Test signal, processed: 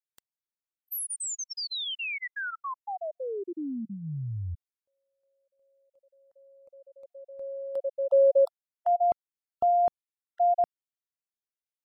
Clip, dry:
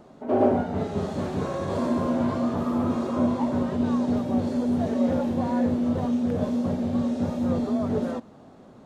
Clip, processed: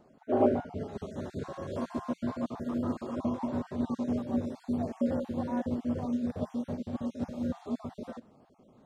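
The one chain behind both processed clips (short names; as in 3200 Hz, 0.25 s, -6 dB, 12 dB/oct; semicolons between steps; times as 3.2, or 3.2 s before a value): random spectral dropouts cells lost 28%; dynamic EQ 180 Hz, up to -5 dB, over -45 dBFS, Q 7.8; upward expander 1.5:1, over -31 dBFS; gain -3 dB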